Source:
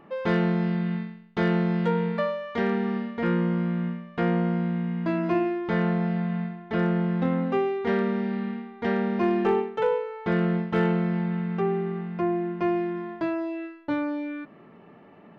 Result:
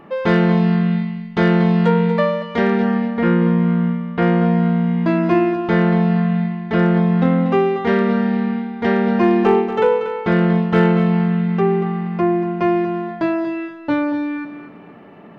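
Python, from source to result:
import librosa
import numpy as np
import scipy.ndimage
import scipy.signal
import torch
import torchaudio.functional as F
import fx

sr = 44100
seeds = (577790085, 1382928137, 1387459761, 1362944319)

p1 = fx.air_absorb(x, sr, metres=120.0, at=(2.82, 4.22))
p2 = p1 + fx.echo_feedback(p1, sr, ms=236, feedback_pct=28, wet_db=-10.5, dry=0)
y = p2 * librosa.db_to_amplitude(8.5)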